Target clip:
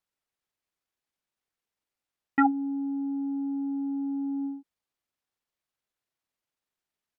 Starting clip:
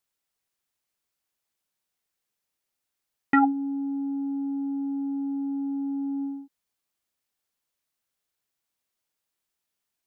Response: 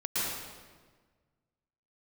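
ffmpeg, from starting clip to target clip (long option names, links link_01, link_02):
-af "aemphasis=mode=reproduction:type=cd,atempo=1.4,volume=-1.5dB"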